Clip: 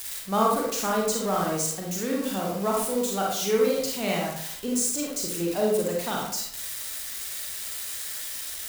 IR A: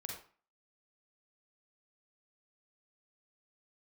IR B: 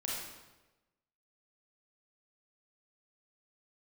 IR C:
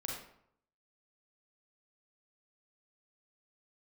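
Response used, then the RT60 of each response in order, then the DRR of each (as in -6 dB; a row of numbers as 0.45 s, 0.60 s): C; 0.40 s, 1.1 s, 0.70 s; -0.5 dB, -5.0 dB, -2.0 dB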